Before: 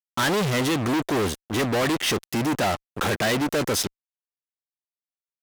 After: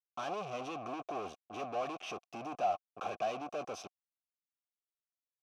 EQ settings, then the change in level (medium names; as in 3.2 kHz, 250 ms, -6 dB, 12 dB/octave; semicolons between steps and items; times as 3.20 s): vowel filter a; bass shelf 270 Hz +9 dB; peaking EQ 5.9 kHz +12 dB 0.25 oct; -4.5 dB